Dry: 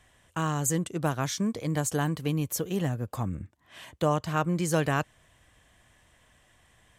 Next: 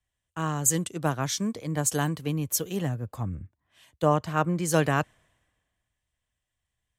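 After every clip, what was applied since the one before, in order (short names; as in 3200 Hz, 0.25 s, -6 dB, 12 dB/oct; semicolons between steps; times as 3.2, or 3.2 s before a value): three-band expander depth 70%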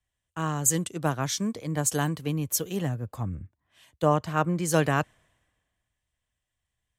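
nothing audible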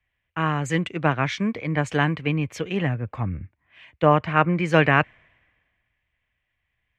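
synth low-pass 2300 Hz, resonance Q 3.8; gain +4.5 dB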